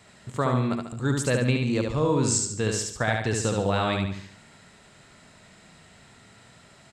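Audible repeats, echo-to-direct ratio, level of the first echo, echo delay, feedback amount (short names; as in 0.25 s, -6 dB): 5, -2.5 dB, -3.5 dB, 72 ms, 43%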